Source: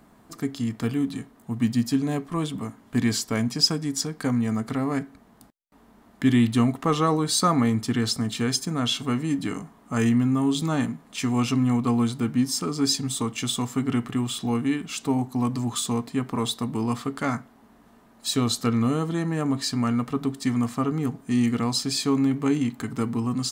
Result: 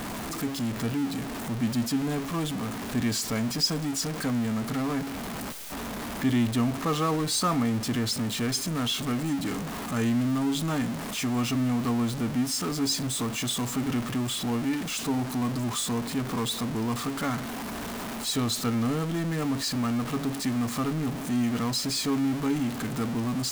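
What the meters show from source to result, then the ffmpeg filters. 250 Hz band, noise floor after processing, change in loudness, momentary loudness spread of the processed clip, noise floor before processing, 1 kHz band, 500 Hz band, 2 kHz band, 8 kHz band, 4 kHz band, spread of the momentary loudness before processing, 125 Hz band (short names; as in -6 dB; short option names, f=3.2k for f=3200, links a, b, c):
-3.5 dB, -35 dBFS, -3.0 dB, 6 LU, -55 dBFS, -2.5 dB, -3.0 dB, -0.5 dB, -1.0 dB, -2.0 dB, 7 LU, -3.5 dB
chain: -af "aeval=exprs='val(0)+0.5*0.0794*sgn(val(0))':c=same,volume=-7dB"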